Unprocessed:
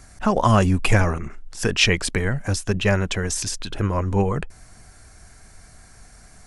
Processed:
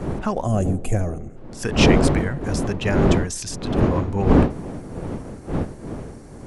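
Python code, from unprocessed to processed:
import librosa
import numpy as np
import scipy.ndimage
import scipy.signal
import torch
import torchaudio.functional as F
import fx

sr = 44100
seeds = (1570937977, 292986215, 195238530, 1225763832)

y = fx.dmg_wind(x, sr, seeds[0], corner_hz=330.0, level_db=-18.0)
y = fx.spec_box(y, sr, start_s=0.42, length_s=0.94, low_hz=800.0, high_hz=6100.0, gain_db=-13)
y = y * librosa.db_to_amplitude(-4.0)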